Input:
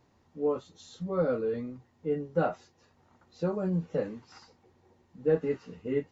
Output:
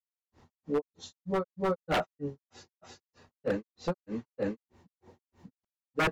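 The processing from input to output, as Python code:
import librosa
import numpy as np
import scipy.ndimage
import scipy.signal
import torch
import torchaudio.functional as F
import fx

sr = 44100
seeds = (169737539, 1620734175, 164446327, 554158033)

y = fx.granulator(x, sr, seeds[0], grain_ms=197.0, per_s=3.2, spray_ms=755.0, spread_st=0)
y = 10.0 ** (-29.0 / 20.0) * (np.abs((y / 10.0 ** (-29.0 / 20.0) + 3.0) % 4.0 - 2.0) - 1.0)
y = y * 10.0 ** (8.0 / 20.0)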